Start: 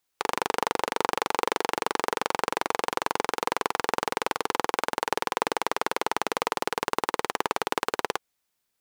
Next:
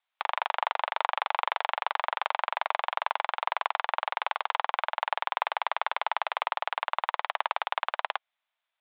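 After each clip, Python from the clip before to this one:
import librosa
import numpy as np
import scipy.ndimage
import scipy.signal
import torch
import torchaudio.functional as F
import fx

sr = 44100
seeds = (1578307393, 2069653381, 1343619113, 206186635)

y = scipy.signal.sosfilt(scipy.signal.cheby1(4, 1.0, [620.0, 3600.0], 'bandpass', fs=sr, output='sos'), x)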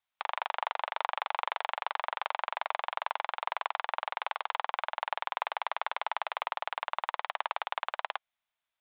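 y = fx.bass_treble(x, sr, bass_db=10, treble_db=1)
y = y * 10.0 ** (-4.5 / 20.0)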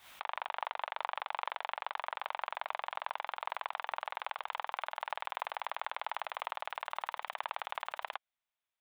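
y = fx.pre_swell(x, sr, db_per_s=120.0)
y = y * 10.0 ** (-5.0 / 20.0)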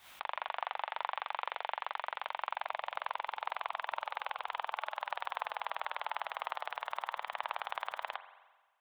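y = fx.rev_spring(x, sr, rt60_s=1.3, pass_ms=(43,), chirp_ms=65, drr_db=11.5)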